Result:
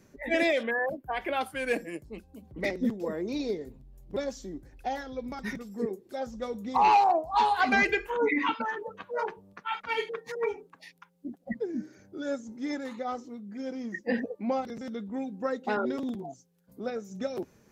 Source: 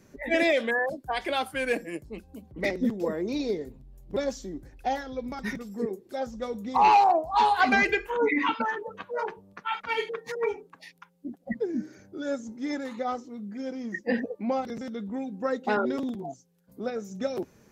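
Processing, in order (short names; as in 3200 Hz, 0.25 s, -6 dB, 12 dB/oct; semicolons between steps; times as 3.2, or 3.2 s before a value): 0.63–1.41 band shelf 6000 Hz -13.5 dB; noise-modulated level, depth 50%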